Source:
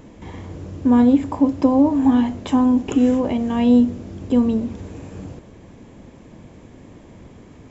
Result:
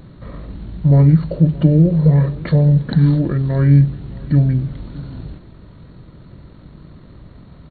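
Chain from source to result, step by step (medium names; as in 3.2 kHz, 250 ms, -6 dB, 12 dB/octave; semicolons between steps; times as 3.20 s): pitch shift -9.5 st; on a send: delay 619 ms -21 dB; on the sum: trim +3.5 dB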